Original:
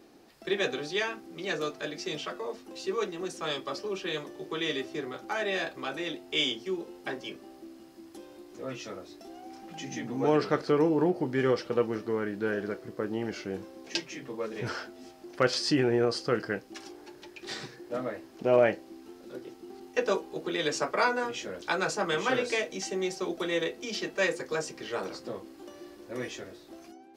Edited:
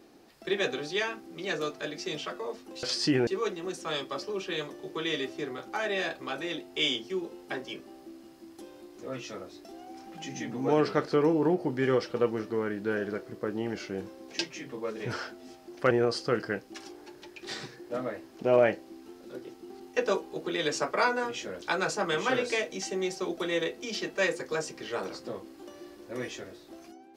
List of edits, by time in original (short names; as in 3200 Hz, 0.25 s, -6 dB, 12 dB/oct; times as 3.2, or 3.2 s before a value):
15.47–15.91 move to 2.83